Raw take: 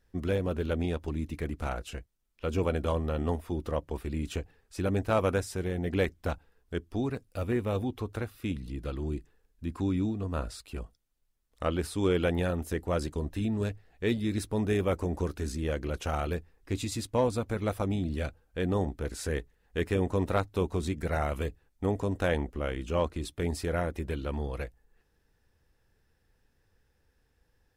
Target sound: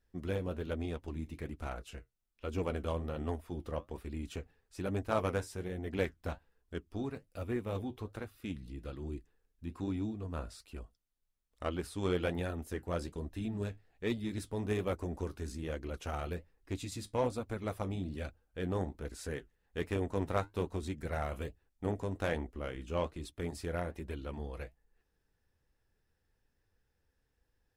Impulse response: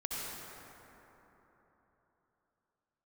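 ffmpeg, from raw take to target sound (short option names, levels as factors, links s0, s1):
-af "aeval=exprs='0.188*(cos(1*acos(clip(val(0)/0.188,-1,1)))-cos(1*PI/2))+0.0266*(cos(3*acos(clip(val(0)/0.188,-1,1)))-cos(3*PI/2))':c=same,flanger=delay=2.8:depth=9.2:regen=-59:speed=1.2:shape=sinusoidal,volume=1.12"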